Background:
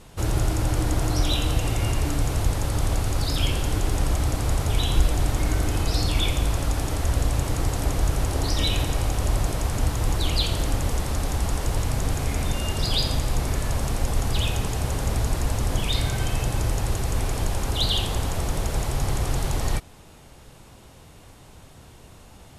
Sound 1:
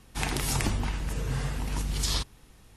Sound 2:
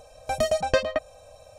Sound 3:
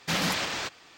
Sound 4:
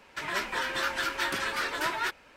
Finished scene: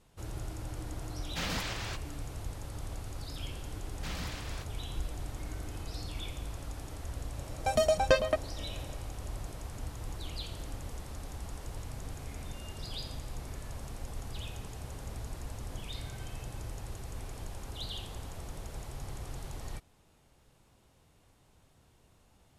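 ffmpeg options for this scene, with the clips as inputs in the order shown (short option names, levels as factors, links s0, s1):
-filter_complex "[3:a]asplit=2[s0][s1];[0:a]volume=0.141[s2];[2:a]bandreject=f=1900:w=23[s3];[s0]atrim=end=0.97,asetpts=PTS-STARTPTS,volume=0.376,afade=t=in:d=0.004:c=hsin,afade=t=out:st=0.966:d=0.004:c=hsin,adelay=1280[s4];[s1]atrim=end=0.97,asetpts=PTS-STARTPTS,volume=0.178,afade=t=in:d=0.004:c=hsin,afade=t=out:st=0.966:d=0.004:c=hsin,adelay=3950[s5];[s3]atrim=end=1.58,asetpts=PTS-STARTPTS,volume=0.75,afade=t=in:d=0.004:c=hsin,afade=t=out:st=1.576:d=0.004:c=hsin,adelay=7370[s6];[s2][s4][s5][s6]amix=inputs=4:normalize=0"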